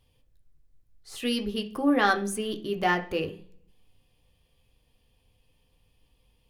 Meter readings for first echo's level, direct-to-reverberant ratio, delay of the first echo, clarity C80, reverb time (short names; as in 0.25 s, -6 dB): none, 3.5 dB, none, 19.5 dB, 0.50 s